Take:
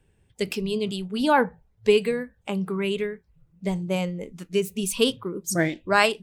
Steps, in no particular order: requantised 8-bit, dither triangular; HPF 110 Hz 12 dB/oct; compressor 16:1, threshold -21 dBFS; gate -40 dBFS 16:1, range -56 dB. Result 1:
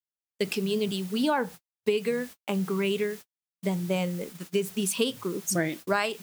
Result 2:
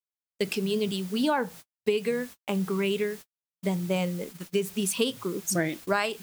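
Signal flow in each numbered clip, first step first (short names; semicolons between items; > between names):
requantised > compressor > gate > HPF; HPF > requantised > gate > compressor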